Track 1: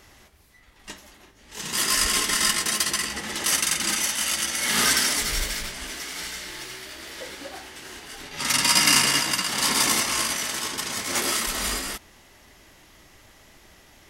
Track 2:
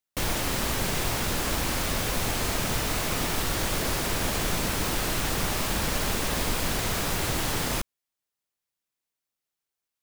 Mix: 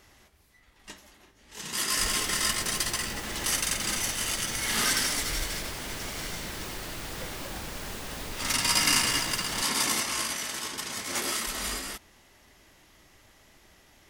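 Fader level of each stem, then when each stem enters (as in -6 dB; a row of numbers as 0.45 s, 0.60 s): -5.5 dB, -11.0 dB; 0.00 s, 1.80 s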